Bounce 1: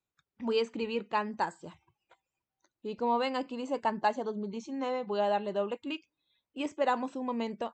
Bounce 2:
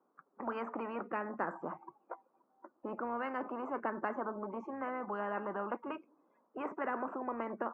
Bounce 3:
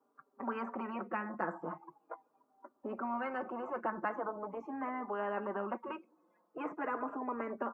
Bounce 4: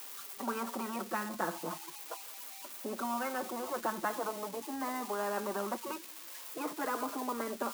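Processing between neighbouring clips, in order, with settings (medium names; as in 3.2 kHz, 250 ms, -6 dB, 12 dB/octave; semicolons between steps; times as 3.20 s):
elliptic band-pass 230–1200 Hz, stop band 50 dB; spectrum-flattening compressor 4:1; trim -4 dB
endless flanger 4.5 ms -0.41 Hz; trim +3 dB
zero-crossing glitches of -34 dBFS; trim +1.5 dB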